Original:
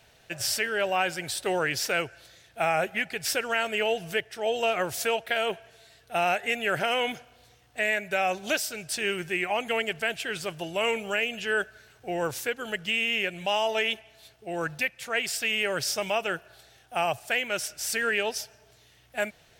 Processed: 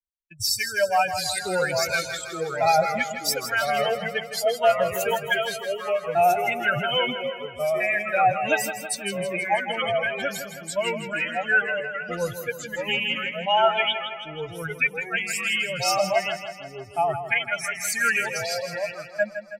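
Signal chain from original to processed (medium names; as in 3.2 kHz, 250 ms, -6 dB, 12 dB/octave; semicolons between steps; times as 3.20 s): expander on every frequency bin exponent 3; expander -52 dBFS; comb 1.3 ms, depth 61%; ever faster or slower copies 686 ms, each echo -2 st, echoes 2, each echo -6 dB; on a send: feedback delay 161 ms, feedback 58%, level -10 dB; on the sum: trim +8.5 dB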